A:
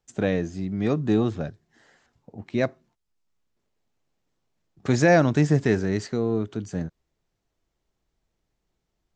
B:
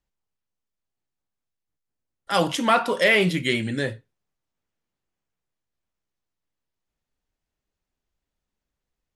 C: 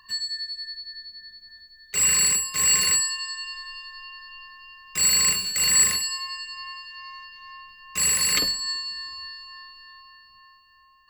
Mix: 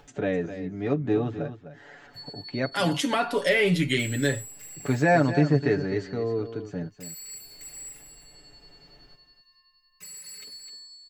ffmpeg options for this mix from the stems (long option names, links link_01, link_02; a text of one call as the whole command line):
ffmpeg -i stem1.wav -i stem2.wav -i stem3.wav -filter_complex "[0:a]acompressor=mode=upward:threshold=-30dB:ratio=2.5,bass=frequency=250:gain=-4,treble=frequency=4000:gain=-14,volume=-3dB,asplit=2[link_01][link_02];[link_02]volume=-11.5dB[link_03];[1:a]acrossover=split=420[link_04][link_05];[link_05]acompressor=threshold=-24dB:ratio=2.5[link_06];[link_04][link_06]amix=inputs=2:normalize=0,adelay=450,volume=-1.5dB[link_07];[2:a]equalizer=frequency=15000:width_type=o:width=0.4:gain=8.5,acompressor=threshold=-26dB:ratio=5,asplit=2[link_08][link_09];[link_09]adelay=3.6,afreqshift=0.29[link_10];[link_08][link_10]amix=inputs=2:normalize=1,adelay=2050,volume=-15.5dB,asplit=2[link_11][link_12];[link_12]volume=-9.5dB[link_13];[link_03][link_13]amix=inputs=2:normalize=0,aecho=0:1:256:1[link_14];[link_01][link_07][link_11][link_14]amix=inputs=4:normalize=0,equalizer=frequency=1100:width_type=o:width=0.32:gain=-4,aecho=1:1:7:0.67" out.wav